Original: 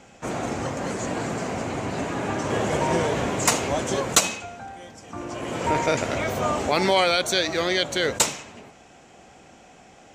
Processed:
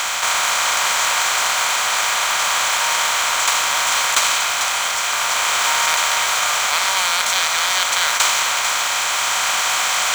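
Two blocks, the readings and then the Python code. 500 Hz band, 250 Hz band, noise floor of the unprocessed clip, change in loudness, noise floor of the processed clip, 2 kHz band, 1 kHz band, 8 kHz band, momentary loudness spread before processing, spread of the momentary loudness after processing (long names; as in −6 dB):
−6.5 dB, −18.0 dB, −51 dBFS, +8.0 dB, −21 dBFS, +12.0 dB, +8.5 dB, +11.5 dB, 15 LU, 2 LU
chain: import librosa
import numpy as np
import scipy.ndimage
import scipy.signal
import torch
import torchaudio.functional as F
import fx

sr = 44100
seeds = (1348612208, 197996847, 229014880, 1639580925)

p1 = fx.bin_compress(x, sr, power=0.2)
p2 = scipy.signal.sosfilt(scipy.signal.butter(4, 920.0, 'highpass', fs=sr, output='sos'), p1)
p3 = fx.high_shelf(p2, sr, hz=7300.0, db=-6.5)
p4 = fx.rider(p3, sr, range_db=10, speed_s=2.0)
p5 = fx.quant_companded(p4, sr, bits=4)
p6 = p5 + fx.echo_single(p5, sr, ms=445, db=-7.5, dry=0)
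y = p6 * librosa.db_to_amplitude(-1.5)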